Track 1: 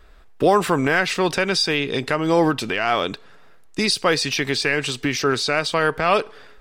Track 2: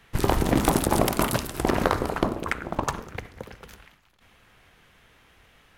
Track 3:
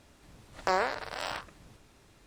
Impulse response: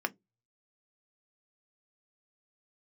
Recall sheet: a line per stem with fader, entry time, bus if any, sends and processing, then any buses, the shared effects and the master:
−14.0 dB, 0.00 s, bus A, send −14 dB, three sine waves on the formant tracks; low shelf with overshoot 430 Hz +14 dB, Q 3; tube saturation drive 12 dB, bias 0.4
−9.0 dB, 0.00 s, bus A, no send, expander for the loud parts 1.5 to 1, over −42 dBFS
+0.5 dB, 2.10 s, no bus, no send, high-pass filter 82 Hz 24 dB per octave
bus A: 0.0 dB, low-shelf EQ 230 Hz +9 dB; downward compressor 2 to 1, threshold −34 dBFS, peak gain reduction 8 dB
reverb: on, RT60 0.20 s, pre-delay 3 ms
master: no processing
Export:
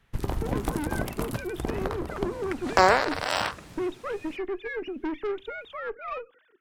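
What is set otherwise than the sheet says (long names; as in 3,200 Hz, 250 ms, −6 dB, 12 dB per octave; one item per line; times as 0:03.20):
stem 2 −9.0 dB → +0.5 dB
stem 3 +0.5 dB → +9.0 dB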